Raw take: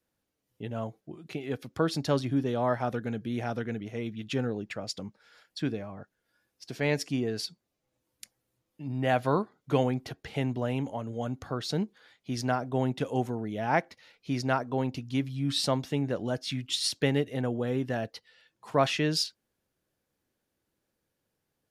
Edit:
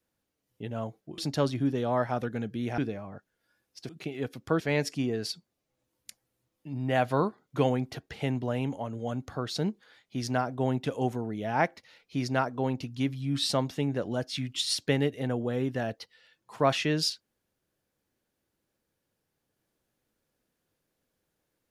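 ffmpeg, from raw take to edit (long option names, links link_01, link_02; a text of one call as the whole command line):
ffmpeg -i in.wav -filter_complex "[0:a]asplit=5[link_01][link_02][link_03][link_04][link_05];[link_01]atrim=end=1.182[link_06];[link_02]atrim=start=1.888:end=3.492[link_07];[link_03]atrim=start=5.628:end=6.742[link_08];[link_04]atrim=start=1.178:end=1.892[link_09];[link_05]atrim=start=6.738[link_10];[link_06][link_07]acrossfade=duration=0.004:curve1=hsin:curve2=hsin[link_11];[link_11][link_08]acrossfade=duration=0.004:curve1=hsin:curve2=hsin[link_12];[link_12][link_09]acrossfade=duration=0.004:curve1=hsin:curve2=hsin[link_13];[link_13][link_10]acrossfade=duration=0.004:curve1=hsin:curve2=hsin" out.wav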